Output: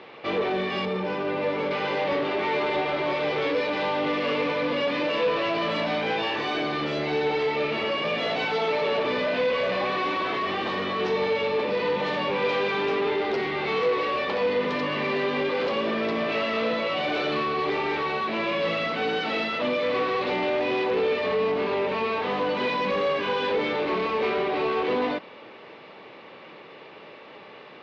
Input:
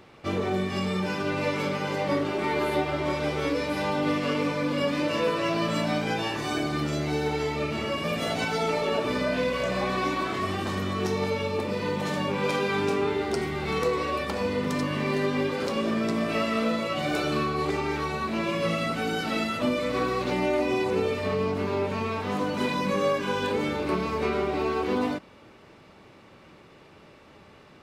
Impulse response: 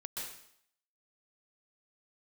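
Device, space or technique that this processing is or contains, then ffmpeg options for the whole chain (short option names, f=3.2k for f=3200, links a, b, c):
overdrive pedal into a guitar cabinet: -filter_complex "[0:a]asettb=1/sr,asplit=3[a][b][c];[a]atrim=end=0.854[d];[b]atrim=start=0.85:end=1.71,asetpts=PTS-STARTPTS,afade=t=in:d=0.004:c=qsin,afade=t=out:st=0.856:d=0.004:c=qsin,equalizer=f=3.7k:w=0.32:g=-9[e];[c]atrim=start=1.706[f];[d][e]acrossfade=d=0.004:c1=hsin:c2=qsin[g];[g][f]acrossfade=d=0.004:c1=qsin:c2=hsin,asplit=2[h][i];[i]highpass=f=720:p=1,volume=23dB,asoftclip=type=tanh:threshold=-12dB[j];[h][j]amix=inputs=2:normalize=0,lowpass=f=5.3k:p=1,volume=-6dB,highpass=76,equalizer=f=87:t=q:w=4:g=-8,equalizer=f=470:t=q:w=4:g=5,equalizer=f=1.4k:t=q:w=4:g=-5,lowpass=f=4.1k:w=0.5412,lowpass=f=4.1k:w=1.3066,volume=-6.5dB"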